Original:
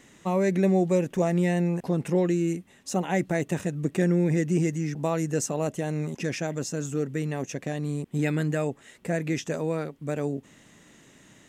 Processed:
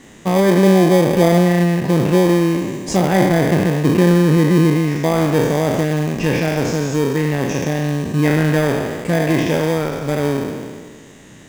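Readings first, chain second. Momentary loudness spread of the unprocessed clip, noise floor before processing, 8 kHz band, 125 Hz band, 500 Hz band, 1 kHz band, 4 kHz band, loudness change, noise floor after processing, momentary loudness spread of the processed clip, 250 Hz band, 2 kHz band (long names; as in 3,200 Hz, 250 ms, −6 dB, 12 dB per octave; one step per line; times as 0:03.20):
8 LU, −56 dBFS, +7.0 dB, +11.0 dB, +11.0 dB, +12.5 dB, +15.0 dB, +11.5 dB, −42 dBFS, 7 LU, +11.5 dB, +12.5 dB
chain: peak hold with a decay on every bin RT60 1.73 s
treble cut that deepens with the level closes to 1,700 Hz, closed at −18 dBFS
in parallel at −4.5 dB: decimation without filtering 32×
on the sum: level +6 dB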